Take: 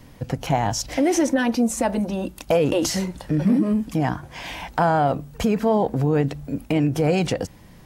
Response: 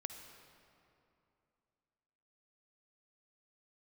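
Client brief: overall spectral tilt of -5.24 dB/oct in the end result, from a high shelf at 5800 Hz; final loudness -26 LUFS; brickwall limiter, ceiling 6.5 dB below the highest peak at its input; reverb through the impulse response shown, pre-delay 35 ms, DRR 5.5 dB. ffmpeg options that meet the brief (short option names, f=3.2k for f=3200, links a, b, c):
-filter_complex "[0:a]highshelf=f=5.8k:g=3,alimiter=limit=-14.5dB:level=0:latency=1,asplit=2[a][b];[1:a]atrim=start_sample=2205,adelay=35[c];[b][c]afir=irnorm=-1:irlink=0,volume=-3dB[d];[a][d]amix=inputs=2:normalize=0,volume=-2.5dB"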